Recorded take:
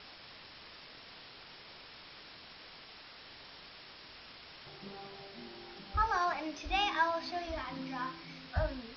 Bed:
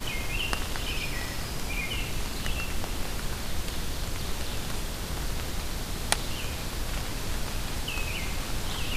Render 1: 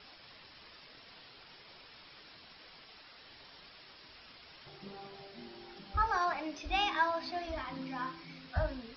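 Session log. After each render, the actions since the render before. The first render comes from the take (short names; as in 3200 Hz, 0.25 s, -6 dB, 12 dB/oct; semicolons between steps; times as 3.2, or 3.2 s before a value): denoiser 6 dB, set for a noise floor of -53 dBFS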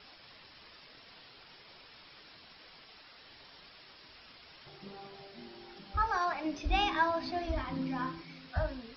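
6.44–8.22 low shelf 360 Hz +10.5 dB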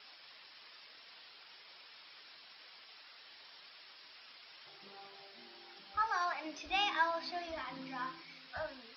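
HPF 1100 Hz 6 dB/oct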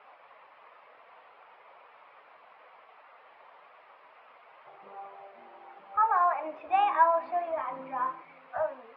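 elliptic band-pass 100–2300 Hz, stop band 50 dB; band shelf 760 Hz +12.5 dB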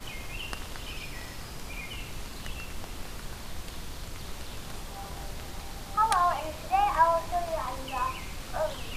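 add bed -7.5 dB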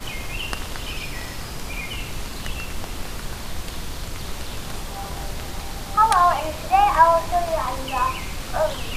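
gain +8.5 dB; limiter -3 dBFS, peak gain reduction 2.5 dB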